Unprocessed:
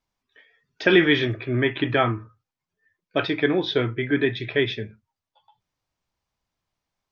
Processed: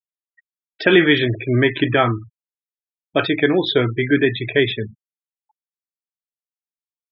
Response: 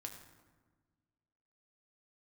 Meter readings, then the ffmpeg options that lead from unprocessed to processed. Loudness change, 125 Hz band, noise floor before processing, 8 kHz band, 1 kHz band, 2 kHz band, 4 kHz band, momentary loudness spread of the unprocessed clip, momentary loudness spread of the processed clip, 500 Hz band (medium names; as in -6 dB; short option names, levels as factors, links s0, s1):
+5.0 dB, +5.5 dB, under -85 dBFS, no reading, +4.5 dB, +4.5 dB, +4.5 dB, 10 LU, 9 LU, +5.0 dB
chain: -filter_complex "[0:a]afftfilt=real='re*gte(hypot(re,im),0.0251)':imag='im*gte(hypot(re,im),0.0251)':win_size=1024:overlap=0.75,asplit=2[s0][s1];[s1]alimiter=limit=0.237:level=0:latency=1:release=299,volume=1.12[s2];[s0][s2]amix=inputs=2:normalize=0"